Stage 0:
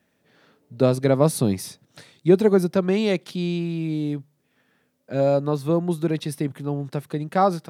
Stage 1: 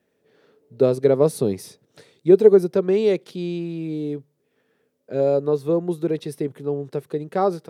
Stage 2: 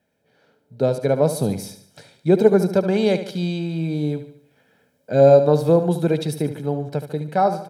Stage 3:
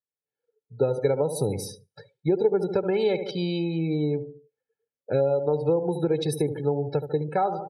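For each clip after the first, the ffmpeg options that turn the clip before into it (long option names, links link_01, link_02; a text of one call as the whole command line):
ffmpeg -i in.wav -af "equalizer=frequency=430:width_type=o:width=0.63:gain=13,volume=-5.5dB" out.wav
ffmpeg -i in.wav -filter_complex "[0:a]aecho=1:1:1.3:0.62,dynaudnorm=framelen=620:gausssize=5:maxgain=11.5dB,asplit=2[link_01][link_02];[link_02]aecho=0:1:73|146|219|292|365:0.282|0.13|0.0596|0.0274|0.0126[link_03];[link_01][link_03]amix=inputs=2:normalize=0,volume=-1dB" out.wav
ffmpeg -i in.wav -af "acompressor=threshold=-20dB:ratio=16,aecho=1:1:2.3:0.6,afftdn=noise_reduction=35:noise_floor=-40" out.wav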